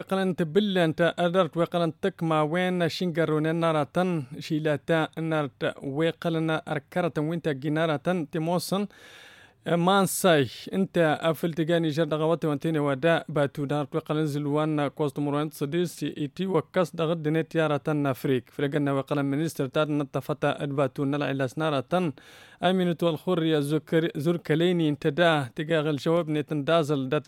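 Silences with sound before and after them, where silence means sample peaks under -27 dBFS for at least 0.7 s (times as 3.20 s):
8.85–9.67 s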